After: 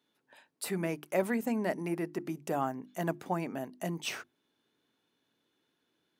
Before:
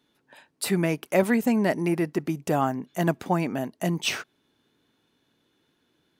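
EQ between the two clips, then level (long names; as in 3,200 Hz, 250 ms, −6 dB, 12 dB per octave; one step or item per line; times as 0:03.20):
dynamic equaliser 3,800 Hz, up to −4 dB, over −44 dBFS, Q 0.82
high-pass filter 180 Hz 6 dB per octave
mains-hum notches 50/100/150/200/250/300/350 Hz
−7.0 dB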